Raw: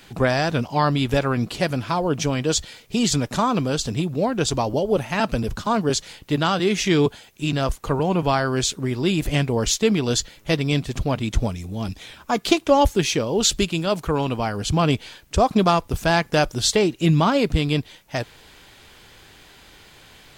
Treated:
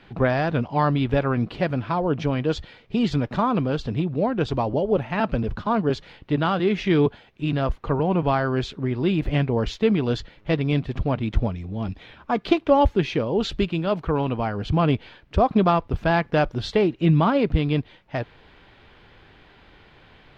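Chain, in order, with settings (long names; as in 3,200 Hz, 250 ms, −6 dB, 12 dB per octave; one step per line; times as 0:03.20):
high-frequency loss of the air 350 metres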